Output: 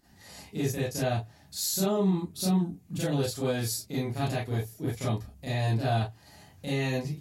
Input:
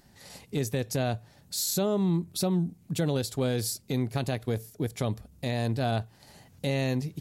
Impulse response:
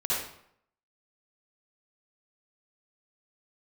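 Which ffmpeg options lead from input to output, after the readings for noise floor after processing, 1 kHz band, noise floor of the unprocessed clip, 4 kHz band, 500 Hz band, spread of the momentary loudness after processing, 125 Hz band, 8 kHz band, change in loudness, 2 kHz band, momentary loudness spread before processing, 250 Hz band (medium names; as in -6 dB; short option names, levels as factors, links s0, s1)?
-57 dBFS, +1.5 dB, -59 dBFS, -0.5 dB, -0.5 dB, 8 LU, +0.5 dB, 0.0 dB, 0.0 dB, +1.0 dB, 8 LU, 0.0 dB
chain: -filter_complex "[1:a]atrim=start_sample=2205,atrim=end_sample=6615,asetrate=74970,aresample=44100[s0];[0:a][s0]afir=irnorm=-1:irlink=0,volume=0.708"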